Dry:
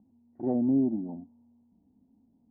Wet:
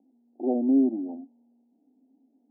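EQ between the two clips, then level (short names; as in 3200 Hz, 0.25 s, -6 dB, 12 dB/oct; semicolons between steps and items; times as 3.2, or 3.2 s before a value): elliptic band-pass 260–790 Hz, stop band 40 dB; +4.5 dB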